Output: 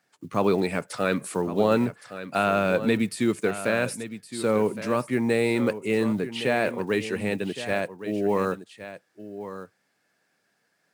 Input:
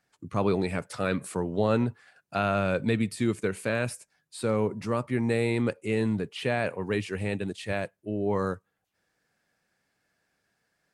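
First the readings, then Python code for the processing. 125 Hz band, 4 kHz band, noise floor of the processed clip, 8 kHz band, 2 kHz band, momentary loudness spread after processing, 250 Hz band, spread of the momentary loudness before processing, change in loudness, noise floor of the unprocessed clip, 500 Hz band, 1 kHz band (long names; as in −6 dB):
−2.0 dB, +4.5 dB, −72 dBFS, +4.5 dB, +4.5 dB, 15 LU, +3.0 dB, 7 LU, +3.0 dB, −78 dBFS, +4.0 dB, +4.0 dB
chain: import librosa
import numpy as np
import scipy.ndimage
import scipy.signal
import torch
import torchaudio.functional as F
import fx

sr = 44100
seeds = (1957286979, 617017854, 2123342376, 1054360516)

p1 = fx.block_float(x, sr, bits=7)
p2 = scipy.signal.sosfilt(scipy.signal.butter(2, 170.0, 'highpass', fs=sr, output='sos'), p1)
p3 = p2 + fx.echo_single(p2, sr, ms=1115, db=-12.5, dry=0)
y = F.gain(torch.from_numpy(p3), 4.0).numpy()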